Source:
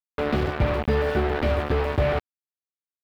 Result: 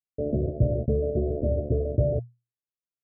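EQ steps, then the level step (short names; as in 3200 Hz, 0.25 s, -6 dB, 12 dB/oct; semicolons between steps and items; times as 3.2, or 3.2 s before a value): Chebyshev low-pass 690 Hz, order 10; bell 120 Hz +13 dB 0.21 oct; -2.0 dB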